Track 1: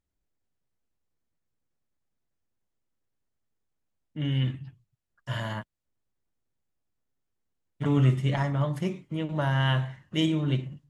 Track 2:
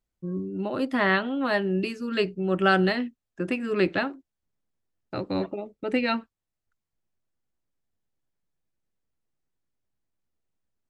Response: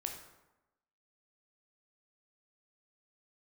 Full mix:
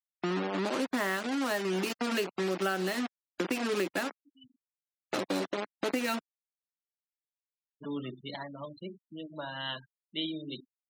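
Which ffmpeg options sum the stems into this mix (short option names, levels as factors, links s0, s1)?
-filter_complex "[0:a]lowpass=f=4100:t=q:w=12,volume=0.316,asplit=2[s0][s1];[s1]volume=0.0668[s2];[1:a]equalizer=f=110:t=o:w=0.72:g=8,acrusher=bits=4:mix=0:aa=0.000001,volume=1.33,asplit=2[s3][s4];[s4]apad=whole_len=480649[s5];[s0][s5]sidechaincompress=threshold=0.00158:ratio=4:attack=27:release=275[s6];[2:a]atrim=start_sample=2205[s7];[s2][s7]afir=irnorm=-1:irlink=0[s8];[s6][s3][s8]amix=inputs=3:normalize=0,highpass=f=210:w=0.5412,highpass=f=210:w=1.3066,afftfilt=real='re*gte(hypot(re,im),0.0158)':imag='im*gte(hypot(re,im),0.0158)':win_size=1024:overlap=0.75,acompressor=threshold=0.0398:ratio=6"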